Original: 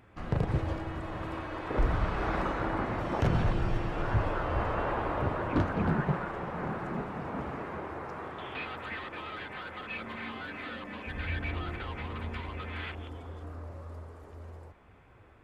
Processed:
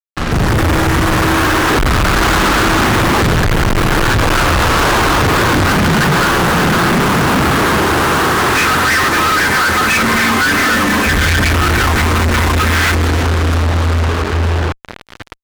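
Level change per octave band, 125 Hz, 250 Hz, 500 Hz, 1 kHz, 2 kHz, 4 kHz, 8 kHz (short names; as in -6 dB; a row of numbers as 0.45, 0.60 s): +19.0 dB, +20.5 dB, +19.0 dB, +22.0 dB, +26.5 dB, +30.0 dB, n/a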